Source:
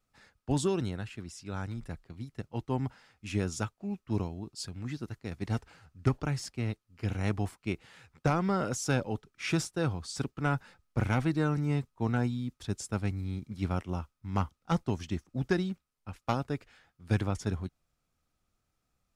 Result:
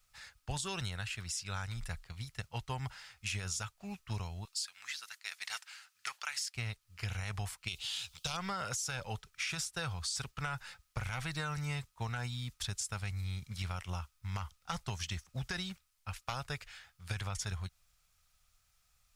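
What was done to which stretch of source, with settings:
4.45–6.55 s: high-pass 1.4 kHz
7.68–8.37 s: resonant high shelf 2.5 kHz +9 dB, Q 3
whole clip: amplifier tone stack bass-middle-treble 10-0-10; peak limiter -33.5 dBFS; compression, threshold -47 dBFS; trim +12.5 dB

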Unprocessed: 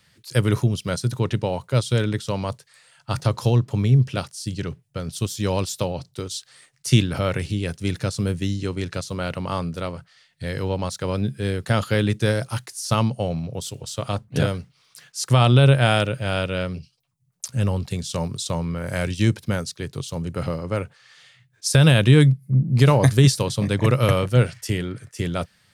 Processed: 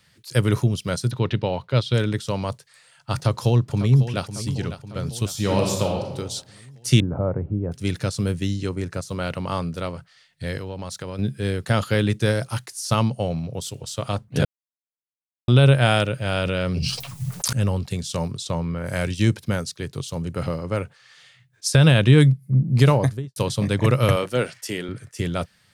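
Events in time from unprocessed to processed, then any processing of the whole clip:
1.11–1.94 s: resonant high shelf 5.6 kHz -12.5 dB, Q 1.5
3.14–4.23 s: echo throw 550 ms, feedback 60%, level -12 dB
5.32–6.13 s: reverb throw, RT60 1 s, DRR 0.5 dB
7.00–7.72 s: low-pass 1 kHz 24 dB/octave
8.69–9.09 s: peaking EQ 3.4 kHz -10.5 dB 1.1 oct
10.57–11.19 s: compression, threshold -28 dBFS
14.45–15.48 s: mute
16.42–17.53 s: level flattener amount 100%
18.31–18.84 s: treble shelf 7.8 kHz -> 4.7 kHz -9.5 dB
21.70–22.18 s: treble shelf 9.5 kHz -11.5 dB
22.82–23.36 s: studio fade out
24.16–24.89 s: high-pass 250 Hz

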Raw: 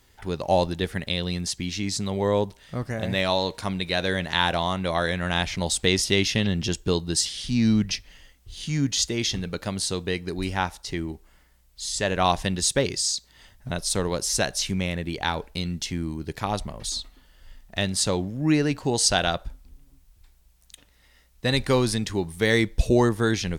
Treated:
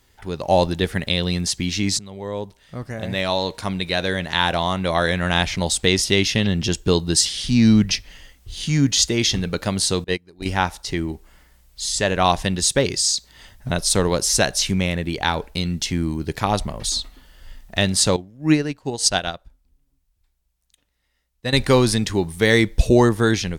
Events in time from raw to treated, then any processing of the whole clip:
1.99–4.78 s: fade in linear, from -18.5 dB
10.04–10.46 s: gate -26 dBFS, range -26 dB
18.16–21.53 s: upward expansion 2.5:1, over -30 dBFS
whole clip: level rider gain up to 7 dB

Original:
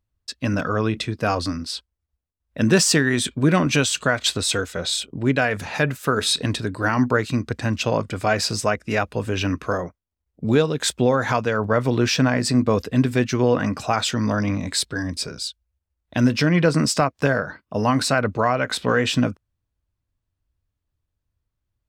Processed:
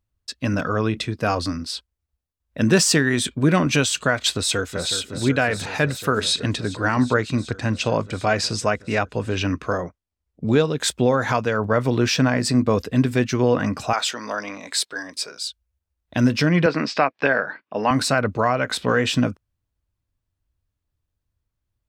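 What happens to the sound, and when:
4.32–4.91 s: echo throw 370 ms, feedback 85%, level -10 dB
6.20–10.77 s: low-pass 8.7 kHz
13.93–15.48 s: high-pass 520 Hz
16.66–17.91 s: cabinet simulation 270–4500 Hz, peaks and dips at 810 Hz +3 dB, 1.7 kHz +5 dB, 2.4 kHz +7 dB

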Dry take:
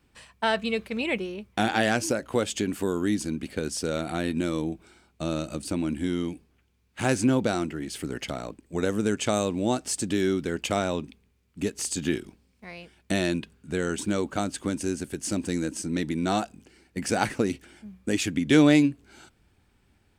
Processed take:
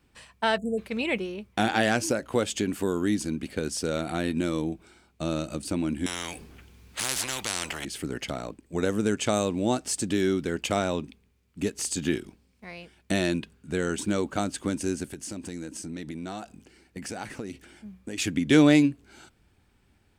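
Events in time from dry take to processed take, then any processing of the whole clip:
0.58–0.78 s: spectral selection erased 860–6700 Hz
6.06–7.85 s: spectrum-flattening compressor 10:1
15.10–18.18 s: compression 3:1, threshold -35 dBFS

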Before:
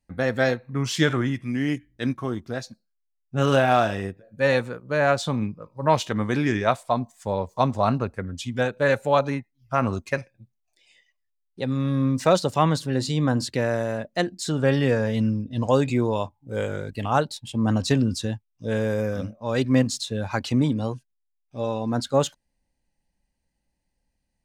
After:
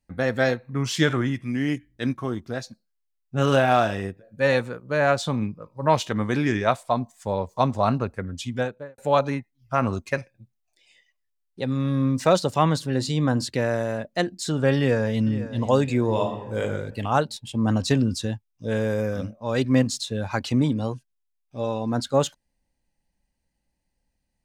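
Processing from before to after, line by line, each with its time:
8.48–8.98 s: studio fade out
14.76–15.36 s: echo throw 500 ms, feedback 45%, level -14.5 dB
16.04–16.60 s: reverb throw, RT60 0.93 s, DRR 1.5 dB

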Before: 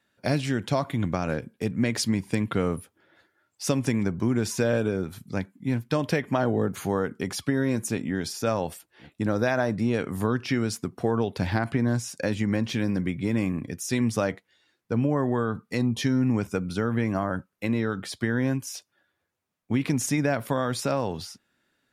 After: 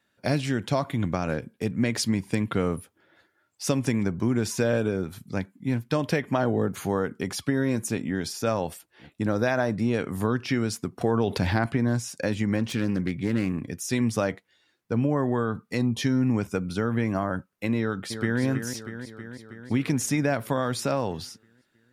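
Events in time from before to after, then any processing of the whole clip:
11.01–11.66 s: level flattener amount 50%
12.59–13.66 s: self-modulated delay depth 0.13 ms
17.78–18.41 s: echo throw 320 ms, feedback 70%, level -8.5 dB

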